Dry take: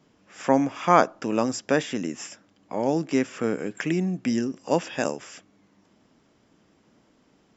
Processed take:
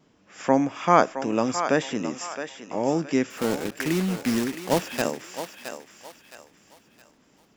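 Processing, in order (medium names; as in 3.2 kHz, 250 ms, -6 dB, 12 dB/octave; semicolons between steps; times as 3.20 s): 3.30–5.03 s: block-companded coder 3-bit; vibrato 1.8 Hz 15 cents; thinning echo 667 ms, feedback 37%, high-pass 540 Hz, level -8 dB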